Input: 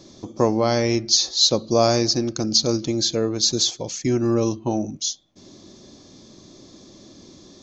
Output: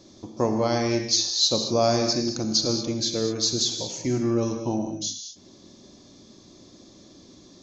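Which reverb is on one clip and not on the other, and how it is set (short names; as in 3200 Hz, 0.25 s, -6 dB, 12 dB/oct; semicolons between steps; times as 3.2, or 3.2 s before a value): non-linear reverb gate 0.25 s flat, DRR 4 dB; gain -5 dB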